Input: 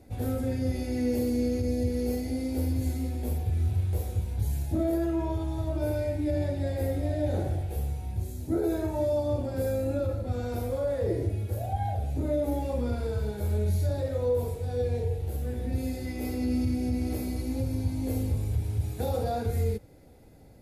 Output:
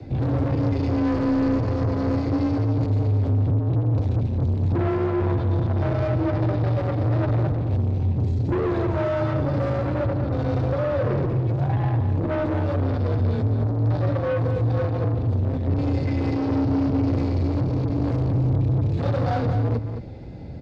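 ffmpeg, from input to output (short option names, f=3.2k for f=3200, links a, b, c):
-filter_complex "[0:a]aeval=exprs='0.133*(cos(1*acos(clip(val(0)/0.133,-1,1)))-cos(1*PI/2))+0.0211*(cos(5*acos(clip(val(0)/0.133,-1,1)))-cos(5*PI/2))':c=same,acrossover=split=250|1500[a][b][c];[a]acontrast=80[d];[d][b][c]amix=inputs=3:normalize=0,lowpass=f=4.7k:w=0.5412,lowpass=f=4.7k:w=1.3066,asoftclip=type=tanh:threshold=-26.5dB,afreqshift=24,asplit=2[e][f];[f]aecho=0:1:216:0.376[g];[e][g]amix=inputs=2:normalize=0,volume=6dB"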